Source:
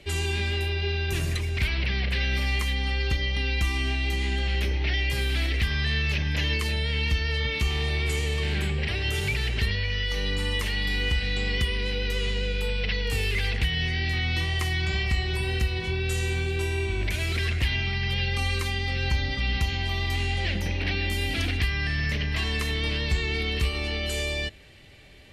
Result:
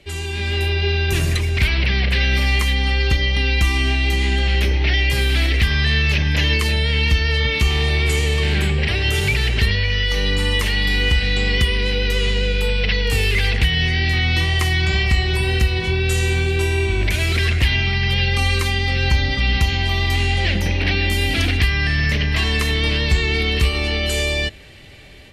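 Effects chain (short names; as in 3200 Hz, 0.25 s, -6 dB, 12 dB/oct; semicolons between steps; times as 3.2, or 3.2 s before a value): AGC gain up to 8.5 dB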